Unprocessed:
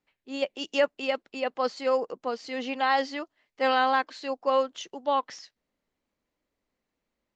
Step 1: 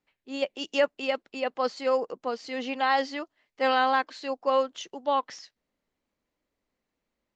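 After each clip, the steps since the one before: nothing audible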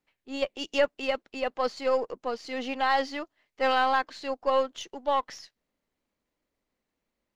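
half-wave gain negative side -3 dB; gain +1 dB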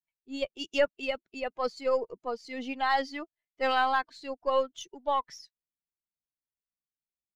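per-bin expansion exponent 1.5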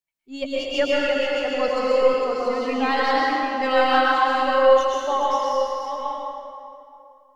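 reverse delay 0.502 s, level -7 dB; plate-style reverb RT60 2.6 s, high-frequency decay 0.65×, pre-delay 0.1 s, DRR -6 dB; gain +2.5 dB

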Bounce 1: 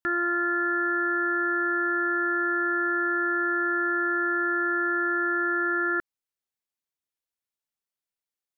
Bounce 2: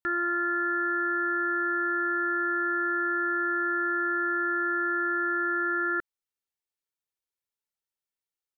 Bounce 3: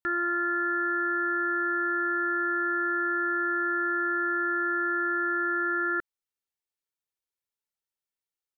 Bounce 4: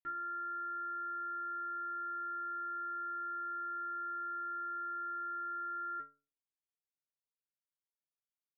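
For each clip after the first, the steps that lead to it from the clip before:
comb 2.2 ms, depth 31%; gain -3.5 dB
nothing audible
LPF 1700 Hz 6 dB/oct; metallic resonator 140 Hz, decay 0.41 s, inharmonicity 0.008; gain +1 dB

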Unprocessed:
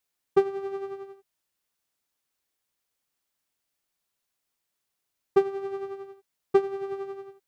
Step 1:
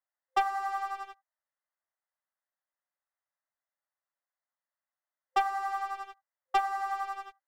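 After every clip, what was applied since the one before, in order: FFT band-pass 520–2100 Hz; sample leveller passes 3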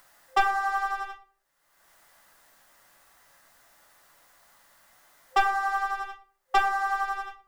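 upward compressor, threshold -44 dBFS; on a send at -3 dB: reverb RT60 0.45 s, pre-delay 6 ms; on the sum: gain +5 dB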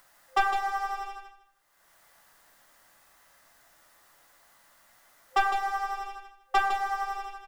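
feedback echo 0.156 s, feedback 22%, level -6 dB; gain -2 dB

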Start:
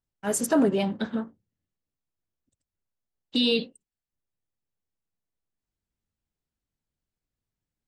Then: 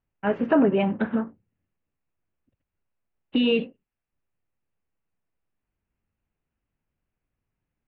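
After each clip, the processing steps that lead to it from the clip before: elliptic low-pass 2700 Hz, stop band 70 dB; in parallel at +2 dB: compressor, threshold -29 dBFS, peak gain reduction 10.5 dB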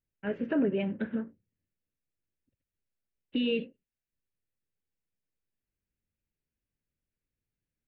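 band shelf 940 Hz -10.5 dB 1.1 oct; gain -7.5 dB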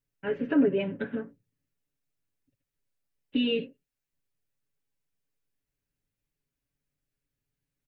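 comb 7.1 ms, depth 71%; gain +1.5 dB

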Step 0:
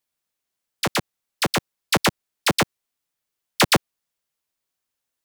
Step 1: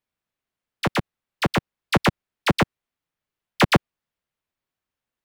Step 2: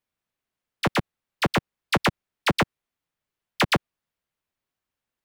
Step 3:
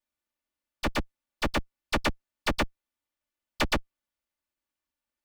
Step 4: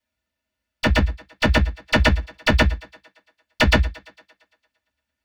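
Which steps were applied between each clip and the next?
tone controls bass +5 dB, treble -12 dB
limiter -12 dBFS, peak gain reduction 7.5 dB
minimum comb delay 3.4 ms; gain -2.5 dB
thinning echo 0.114 s, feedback 61%, high-pass 200 Hz, level -21 dB; reverb RT60 0.10 s, pre-delay 3 ms, DRR 3 dB; gain +1.5 dB

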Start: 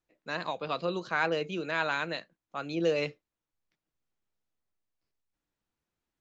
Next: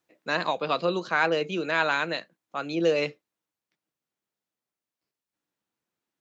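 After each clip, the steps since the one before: HPF 160 Hz 12 dB/oct; vocal rider 2 s; gain +4.5 dB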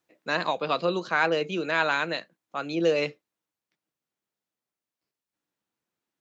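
nothing audible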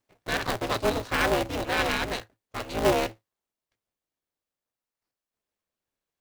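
minimum comb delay 1.8 ms; in parallel at -7.5 dB: decimation with a swept rate 22×, swing 100% 0.55 Hz; on the sum: polarity switched at an audio rate 110 Hz; gain -1.5 dB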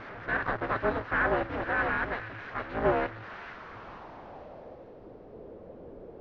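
delta modulation 32 kbps, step -34 dBFS; low-pass sweep 1600 Hz -> 480 Hz, 3.47–4.93; thin delay 0.458 s, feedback 31%, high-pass 2500 Hz, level -6.5 dB; gain -4 dB

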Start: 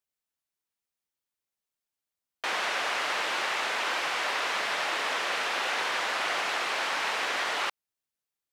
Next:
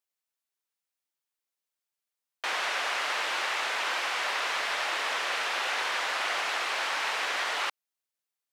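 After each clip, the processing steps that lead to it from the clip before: HPF 490 Hz 6 dB/oct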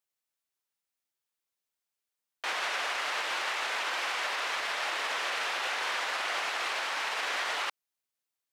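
limiter -23 dBFS, peak gain reduction 5 dB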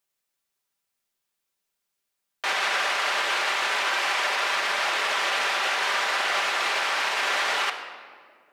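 shoebox room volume 3000 m³, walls mixed, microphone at 1.2 m; gain +6 dB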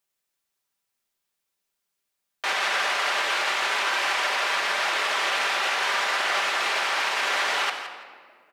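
feedback echo 0.168 s, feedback 17%, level -12 dB

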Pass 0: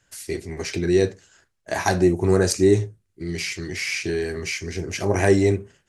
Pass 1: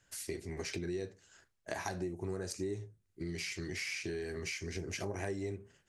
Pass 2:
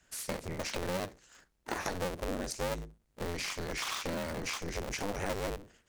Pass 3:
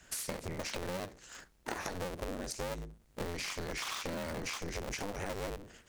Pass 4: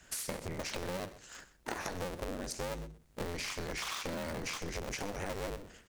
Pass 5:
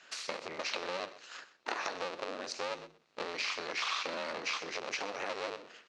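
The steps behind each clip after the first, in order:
compressor 6:1, threshold -31 dBFS, peak gain reduction 18 dB; gain -5.5 dB
cycle switcher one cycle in 2, inverted; gain +3 dB
compressor 6:1, threshold -45 dBFS, peak gain reduction 14 dB; gain +8.5 dB
echo 0.126 s -16 dB
speaker cabinet 420–5800 Hz, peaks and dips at 1200 Hz +5 dB, 2600 Hz +5 dB, 4100 Hz +5 dB; gain +2 dB

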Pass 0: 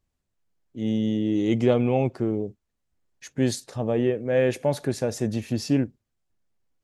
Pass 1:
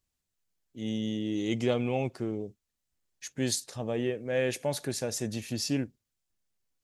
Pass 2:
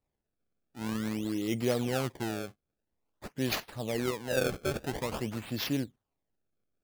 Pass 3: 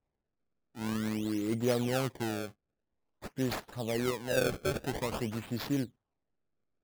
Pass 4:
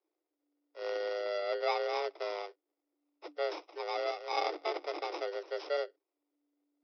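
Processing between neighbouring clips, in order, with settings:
high shelf 2200 Hz +12 dB; gain -8 dB
decimation with a swept rate 26×, swing 160% 0.49 Hz; gain -1.5 dB
median filter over 15 samples
FFT order left unsorted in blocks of 32 samples; downsampling 11025 Hz; frequency shift +290 Hz; gain -1.5 dB

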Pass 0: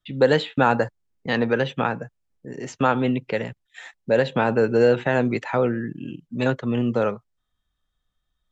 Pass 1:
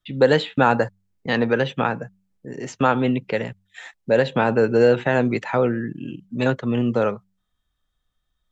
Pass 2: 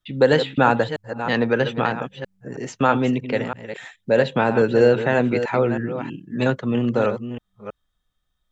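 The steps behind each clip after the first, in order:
de-hum 95.59 Hz, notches 2; gain +1.5 dB
reverse delay 0.321 s, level -9.5 dB

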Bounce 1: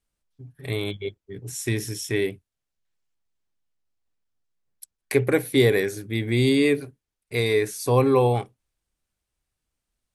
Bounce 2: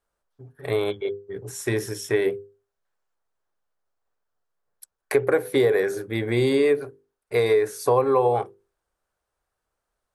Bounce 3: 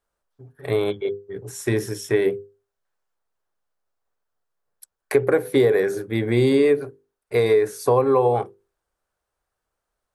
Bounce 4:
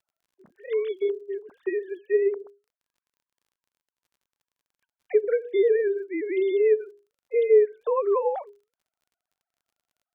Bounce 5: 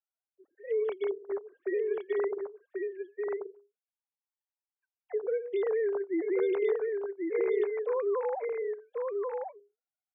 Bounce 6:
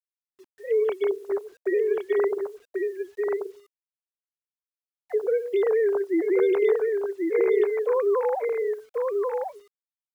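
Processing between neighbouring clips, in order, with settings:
band shelf 800 Hz +12 dB 2.4 oct; notches 50/100/150/200/250/300/350/400/450/500 Hz; compressor 5:1, threshold -14 dBFS, peak gain reduction 9.5 dB; gain -2.5 dB
dynamic EQ 190 Hz, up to +6 dB, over -36 dBFS, Q 0.74
sine-wave speech; in parallel at +0.5 dB: compressor, threshold -26 dBFS, peak gain reduction 16.5 dB; on the sum: crackle 40/s -50 dBFS; gain -6 dB
sine-wave speech; limiter -21 dBFS, peak gain reduction 10 dB; echo 1.086 s -3.5 dB; gain -3 dB
bit-crush 11-bit; gain +7 dB

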